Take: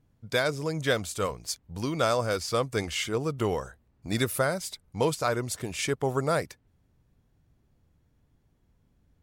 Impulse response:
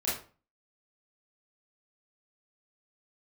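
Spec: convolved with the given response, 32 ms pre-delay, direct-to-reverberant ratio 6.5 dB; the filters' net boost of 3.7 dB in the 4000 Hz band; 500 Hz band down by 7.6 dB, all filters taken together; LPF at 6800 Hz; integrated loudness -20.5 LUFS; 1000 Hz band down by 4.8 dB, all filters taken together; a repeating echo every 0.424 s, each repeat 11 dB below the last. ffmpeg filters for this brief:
-filter_complex "[0:a]lowpass=6.8k,equalizer=f=500:t=o:g=-8,equalizer=f=1k:t=o:g=-5,equalizer=f=4k:t=o:g=5.5,aecho=1:1:424|848|1272:0.282|0.0789|0.0221,asplit=2[a][b];[1:a]atrim=start_sample=2205,adelay=32[c];[b][c]afir=irnorm=-1:irlink=0,volume=-13.5dB[d];[a][d]amix=inputs=2:normalize=0,volume=10dB"

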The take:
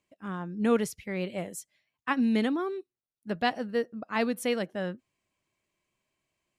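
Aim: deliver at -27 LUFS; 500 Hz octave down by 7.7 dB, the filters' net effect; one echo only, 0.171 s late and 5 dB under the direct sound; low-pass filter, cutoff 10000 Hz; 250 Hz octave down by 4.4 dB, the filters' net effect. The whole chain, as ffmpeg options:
-af "lowpass=10k,equalizer=f=250:t=o:g=-3.5,equalizer=f=500:t=o:g=-8,aecho=1:1:171:0.562,volume=6.5dB"

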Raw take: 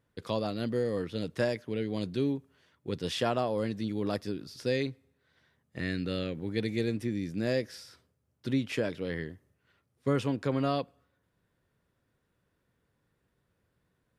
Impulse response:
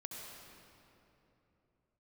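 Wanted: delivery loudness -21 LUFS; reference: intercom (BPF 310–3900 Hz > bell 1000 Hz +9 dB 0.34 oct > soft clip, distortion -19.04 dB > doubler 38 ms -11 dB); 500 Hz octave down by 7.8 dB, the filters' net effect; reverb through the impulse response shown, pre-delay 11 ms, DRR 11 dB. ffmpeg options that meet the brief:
-filter_complex "[0:a]equalizer=f=500:t=o:g=-9,asplit=2[a][b];[1:a]atrim=start_sample=2205,adelay=11[c];[b][c]afir=irnorm=-1:irlink=0,volume=-9dB[d];[a][d]amix=inputs=2:normalize=0,highpass=310,lowpass=3.9k,equalizer=f=1k:t=o:w=0.34:g=9,asoftclip=threshold=-24.5dB,asplit=2[e][f];[f]adelay=38,volume=-11dB[g];[e][g]amix=inputs=2:normalize=0,volume=18dB"

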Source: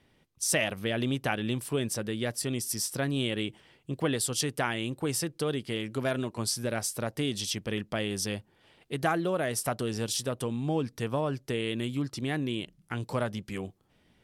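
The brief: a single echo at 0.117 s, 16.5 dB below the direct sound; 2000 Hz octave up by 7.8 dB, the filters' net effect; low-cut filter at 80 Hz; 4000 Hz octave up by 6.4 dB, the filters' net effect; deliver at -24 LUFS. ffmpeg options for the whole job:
-af "highpass=80,equalizer=f=2k:t=o:g=8.5,equalizer=f=4k:t=o:g=5.5,aecho=1:1:117:0.15,volume=4dB"

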